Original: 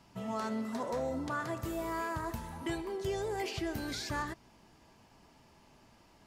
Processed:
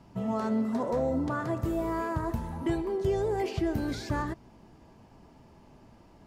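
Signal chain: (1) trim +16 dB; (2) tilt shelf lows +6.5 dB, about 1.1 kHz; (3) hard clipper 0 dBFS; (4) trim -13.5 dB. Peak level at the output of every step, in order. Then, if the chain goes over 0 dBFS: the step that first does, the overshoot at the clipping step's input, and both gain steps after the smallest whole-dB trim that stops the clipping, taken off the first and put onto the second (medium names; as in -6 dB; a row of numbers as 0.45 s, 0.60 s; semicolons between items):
-9.0 dBFS, -4.0 dBFS, -4.0 dBFS, -17.5 dBFS; nothing clips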